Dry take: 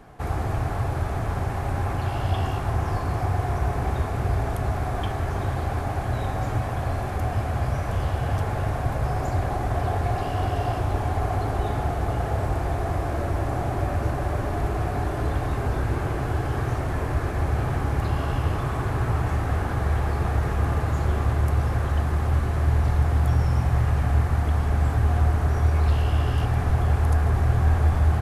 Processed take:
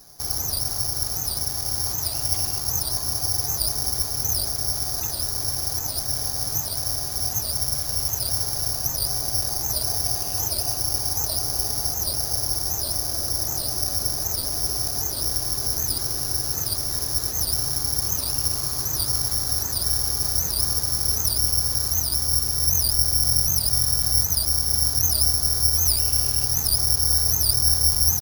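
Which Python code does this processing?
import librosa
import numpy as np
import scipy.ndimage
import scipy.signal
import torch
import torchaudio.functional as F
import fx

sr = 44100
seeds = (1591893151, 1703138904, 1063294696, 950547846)

y = (np.kron(x[::8], np.eye(8)[0]) * 8)[:len(x)]
y = fx.record_warp(y, sr, rpm=78.0, depth_cents=250.0)
y = y * librosa.db_to_amplitude(-9.5)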